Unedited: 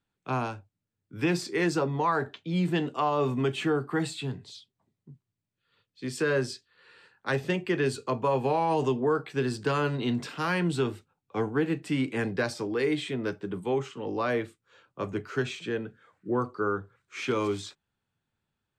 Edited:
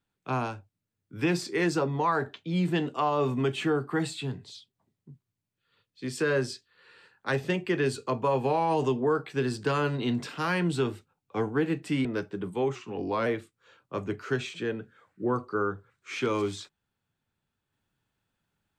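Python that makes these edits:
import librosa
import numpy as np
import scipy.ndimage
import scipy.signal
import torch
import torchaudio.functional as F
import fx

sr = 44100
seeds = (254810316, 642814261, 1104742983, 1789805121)

y = fx.edit(x, sr, fx.cut(start_s=12.05, length_s=1.1),
    fx.speed_span(start_s=13.85, length_s=0.47, speed=0.92), tone=tone)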